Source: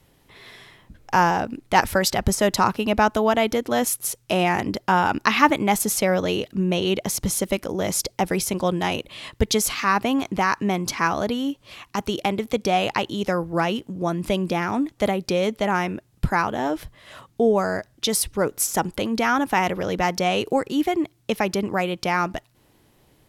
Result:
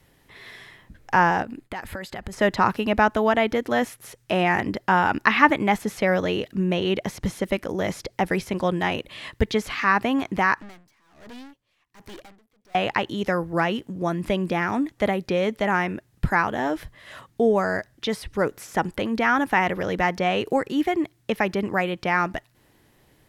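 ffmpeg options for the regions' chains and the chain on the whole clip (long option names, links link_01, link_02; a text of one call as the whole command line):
ffmpeg -i in.wav -filter_complex "[0:a]asettb=1/sr,asplit=3[link_01][link_02][link_03];[link_01]atrim=end=1.424[link_04];[link_02]atrim=start=1.42:end=2.33,asetpts=PTS-STARTPTS,afade=type=in:duration=0.004:curve=qsin,afade=type=out:start_time=0.906:duration=0.004:curve=qsin,acompressor=threshold=-28dB:ratio=16:attack=3.2:release=140:knee=1:detection=peak,bandreject=frequency=5700:width=5.9,agate=range=-33dB:threshold=-49dB:ratio=3:release=100:detection=peak[link_05];[link_03]atrim=start=2.326[link_06];[link_04][link_05]acrossfade=duration=0.004:curve1=hsin:curve2=qsin[link_07];[link_07][link_06]acrossfade=duration=0.004:curve1=qsin:curve2=hsin,asettb=1/sr,asplit=3[link_08][link_09][link_10];[link_08]atrim=end=10.604[link_11];[link_09]atrim=start=10.6:end=12.75,asetpts=PTS-STARTPTS,afade=type=in:duration=0.004:curve=qsin,afade=type=out:start_time=2.146:duration=0.004:curve=qsin,aeval=exprs='(tanh(79.4*val(0)+0.5)-tanh(0.5))/79.4':channel_layout=same,aeval=exprs='val(0)*pow(10,-26*(0.5-0.5*cos(2*PI*1.3*n/s))/20)':channel_layout=same[link_12];[link_10]atrim=start=12.746[link_13];[link_11][link_12]acrossfade=duration=0.004:curve1=hsin:curve2=qsin[link_14];[link_14][link_13]acrossfade=duration=0.004:curve1=qsin:curve2=hsin,equalizer=frequency=1800:width_type=o:width=0.46:gain=6,acrossover=split=3500[link_15][link_16];[link_16]acompressor=threshold=-43dB:ratio=4:attack=1:release=60[link_17];[link_15][link_17]amix=inputs=2:normalize=0,volume=-1dB" out.wav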